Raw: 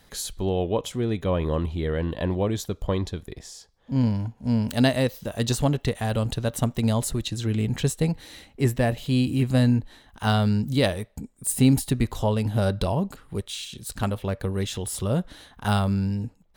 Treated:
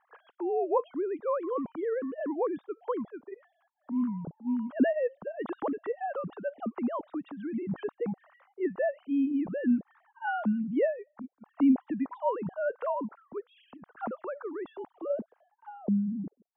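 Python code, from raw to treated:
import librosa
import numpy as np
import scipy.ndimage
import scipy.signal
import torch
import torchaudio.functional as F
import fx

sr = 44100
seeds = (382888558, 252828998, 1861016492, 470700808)

y = fx.sine_speech(x, sr)
y = fx.filter_sweep_lowpass(y, sr, from_hz=1200.0, to_hz=420.0, start_s=14.62, end_s=15.75, q=1.9)
y = y * 10.0 ** (-8.0 / 20.0)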